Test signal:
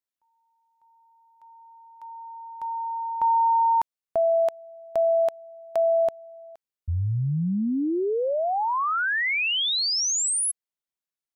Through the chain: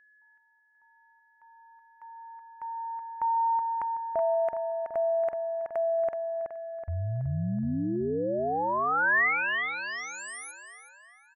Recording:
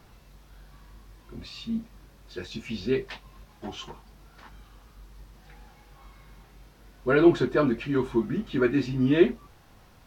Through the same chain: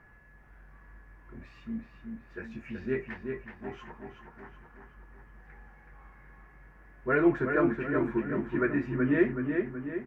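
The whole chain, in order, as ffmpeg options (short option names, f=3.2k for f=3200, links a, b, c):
-filter_complex "[0:a]highshelf=f=2.7k:t=q:w=3:g=-12.5,aeval=exprs='val(0)+0.00224*sin(2*PI*1700*n/s)':c=same,asplit=2[a][b];[b]adelay=375,lowpass=f=3.8k:p=1,volume=-5dB,asplit=2[c][d];[d]adelay=375,lowpass=f=3.8k:p=1,volume=0.52,asplit=2[e][f];[f]adelay=375,lowpass=f=3.8k:p=1,volume=0.52,asplit=2[g][h];[h]adelay=375,lowpass=f=3.8k:p=1,volume=0.52,asplit=2[i][j];[j]adelay=375,lowpass=f=3.8k:p=1,volume=0.52,asplit=2[k][l];[l]adelay=375,lowpass=f=3.8k:p=1,volume=0.52,asplit=2[m][n];[n]adelay=375,lowpass=f=3.8k:p=1,volume=0.52[o];[a][c][e][g][i][k][m][o]amix=inputs=8:normalize=0,volume=-6dB"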